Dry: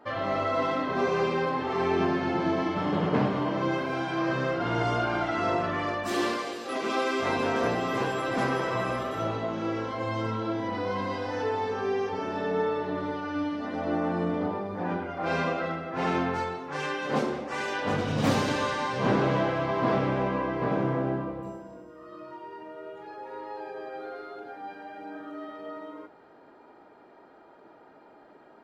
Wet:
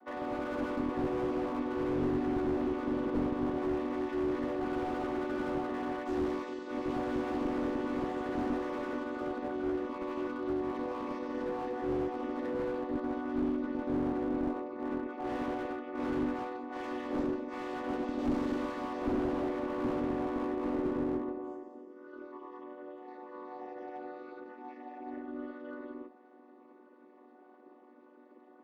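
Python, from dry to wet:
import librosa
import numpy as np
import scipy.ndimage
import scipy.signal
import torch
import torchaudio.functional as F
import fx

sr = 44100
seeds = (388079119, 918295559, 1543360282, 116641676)

y = fx.chord_vocoder(x, sr, chord='minor triad', root=59)
y = fx.cheby_harmonics(y, sr, harmonics=(3, 4, 5), levels_db=(-13, -24, -23), full_scale_db=-12.0)
y = fx.slew_limit(y, sr, full_power_hz=14.0)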